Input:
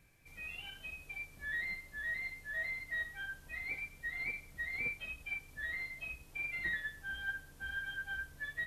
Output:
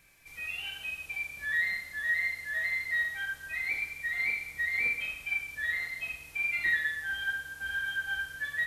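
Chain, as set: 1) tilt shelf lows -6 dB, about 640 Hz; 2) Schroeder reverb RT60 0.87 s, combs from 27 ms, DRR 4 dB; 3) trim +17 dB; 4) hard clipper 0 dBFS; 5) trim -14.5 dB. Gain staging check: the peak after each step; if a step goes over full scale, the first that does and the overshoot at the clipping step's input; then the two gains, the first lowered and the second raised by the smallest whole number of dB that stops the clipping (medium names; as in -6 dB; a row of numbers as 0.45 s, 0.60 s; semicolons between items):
-23.0 dBFS, -21.0 dBFS, -4.0 dBFS, -4.0 dBFS, -18.5 dBFS; nothing clips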